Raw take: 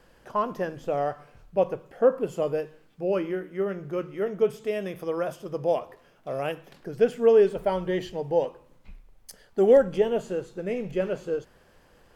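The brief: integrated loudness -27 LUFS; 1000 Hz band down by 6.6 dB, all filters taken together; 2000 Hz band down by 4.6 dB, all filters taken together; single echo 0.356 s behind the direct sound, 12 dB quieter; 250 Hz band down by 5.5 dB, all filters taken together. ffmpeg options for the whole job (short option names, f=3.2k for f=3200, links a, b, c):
-af "equalizer=f=250:t=o:g=-8,equalizer=f=1k:t=o:g=-8,equalizer=f=2k:t=o:g=-3,aecho=1:1:356:0.251,volume=3dB"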